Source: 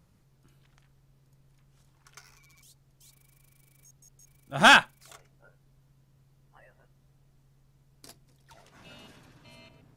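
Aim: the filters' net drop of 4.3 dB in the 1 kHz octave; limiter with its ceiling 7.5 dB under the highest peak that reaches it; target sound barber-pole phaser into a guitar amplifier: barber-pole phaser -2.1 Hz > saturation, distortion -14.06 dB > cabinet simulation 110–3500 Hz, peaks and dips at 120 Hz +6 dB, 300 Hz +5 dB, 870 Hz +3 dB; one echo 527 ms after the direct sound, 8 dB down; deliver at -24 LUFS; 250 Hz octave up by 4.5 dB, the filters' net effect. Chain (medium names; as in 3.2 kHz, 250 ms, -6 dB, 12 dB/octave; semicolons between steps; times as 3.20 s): peaking EQ 250 Hz +3.5 dB; peaking EQ 1 kHz -8.5 dB; peak limiter -15.5 dBFS; delay 527 ms -8 dB; barber-pole phaser -2.1 Hz; saturation -24 dBFS; cabinet simulation 110–3500 Hz, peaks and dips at 120 Hz +6 dB, 300 Hz +5 dB, 870 Hz +3 dB; trim +12 dB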